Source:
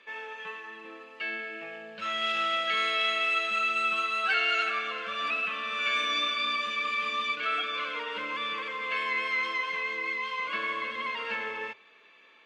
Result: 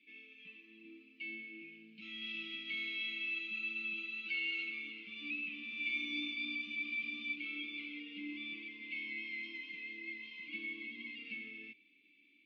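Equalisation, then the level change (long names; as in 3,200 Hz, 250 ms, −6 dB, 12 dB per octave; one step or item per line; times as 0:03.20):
formant filter u
Chebyshev band-stop filter 210–3,400 Hz, order 2
low-pass filter 5,700 Hz 24 dB per octave
+10.5 dB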